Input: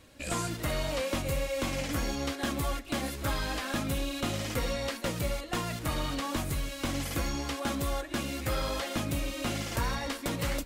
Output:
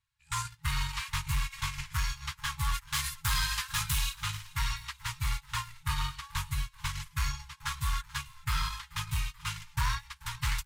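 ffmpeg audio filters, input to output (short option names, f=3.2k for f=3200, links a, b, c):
-filter_complex "[0:a]asplit=3[a][b][c];[a]afade=t=out:st=2.73:d=0.02[d];[b]highshelf=f=4k:g=9.5,afade=t=in:st=2.73:d=0.02,afade=t=out:st=4.13:d=0.02[e];[c]afade=t=in:st=4.13:d=0.02[f];[d][e][f]amix=inputs=3:normalize=0,agate=range=-31dB:threshold=-30dB:ratio=16:detection=peak,volume=29.5dB,asoftclip=hard,volume=-29.5dB,highshelf=f=11k:g=-4,asplit=6[g][h][i][j][k][l];[h]adelay=434,afreqshift=-53,volume=-21dB[m];[i]adelay=868,afreqshift=-106,volume=-25.2dB[n];[j]adelay=1302,afreqshift=-159,volume=-29.3dB[o];[k]adelay=1736,afreqshift=-212,volume=-33.5dB[p];[l]adelay=2170,afreqshift=-265,volume=-37.6dB[q];[g][m][n][o][p][q]amix=inputs=6:normalize=0,afftfilt=real='re*(1-between(b*sr/4096,160,840))':imag='im*(1-between(b*sr/4096,160,840))':win_size=4096:overlap=0.75,volume=5.5dB"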